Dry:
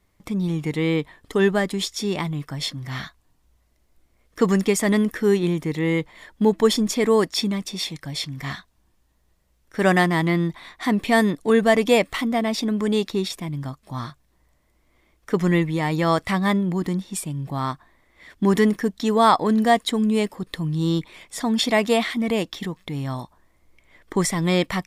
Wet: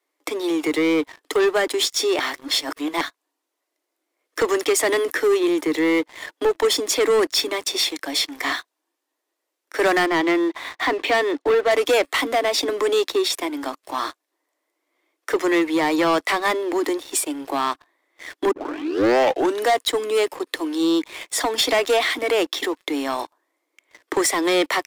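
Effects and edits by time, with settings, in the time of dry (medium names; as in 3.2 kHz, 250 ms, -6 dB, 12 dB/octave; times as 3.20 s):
2.20–3.01 s: reverse
10.06–11.71 s: low-pass 3.7 kHz
18.51 s: tape start 1.13 s
whole clip: steep high-pass 280 Hz 96 dB/octave; compression 1.5:1, threshold -32 dBFS; waveshaping leveller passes 3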